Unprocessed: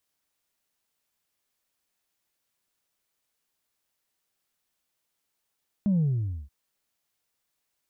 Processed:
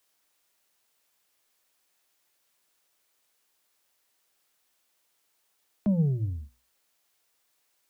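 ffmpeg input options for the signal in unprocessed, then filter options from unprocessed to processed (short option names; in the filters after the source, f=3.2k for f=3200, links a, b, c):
-f lavfi -i "aevalsrc='0.0944*clip((0.63-t)/0.5,0,1)*tanh(1.06*sin(2*PI*210*0.63/log(65/210)*(exp(log(65/210)*t/0.63)-1)))/tanh(1.06)':d=0.63:s=44100"
-filter_complex "[0:a]bandreject=f=60:t=h:w=6,bandreject=f=120:t=h:w=6,bandreject=f=180:t=h:w=6,bandreject=f=240:t=h:w=6,acrossover=split=180|280[a][b][c];[c]acontrast=84[d];[a][b][d]amix=inputs=3:normalize=0"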